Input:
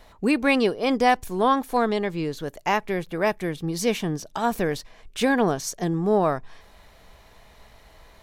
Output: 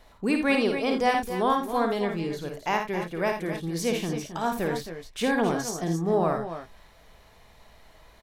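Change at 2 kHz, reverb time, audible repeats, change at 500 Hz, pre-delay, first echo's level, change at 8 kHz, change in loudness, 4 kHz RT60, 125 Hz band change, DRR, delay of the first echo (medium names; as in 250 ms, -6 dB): -2.5 dB, no reverb, 2, -2.5 dB, no reverb, -5.5 dB, -2.5 dB, -3.0 dB, no reverb, -2.0 dB, no reverb, 54 ms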